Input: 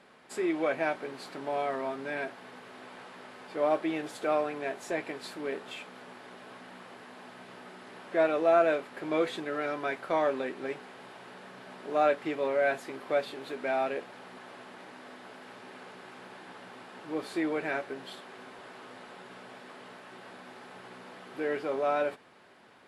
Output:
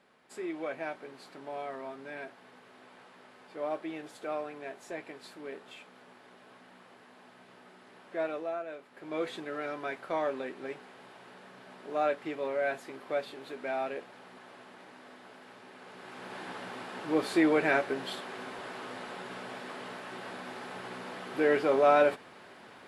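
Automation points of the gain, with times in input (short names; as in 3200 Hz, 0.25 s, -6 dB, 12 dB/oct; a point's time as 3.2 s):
8.34 s -7.5 dB
8.65 s -16.5 dB
9.28 s -4 dB
15.77 s -4 dB
16.4 s +6 dB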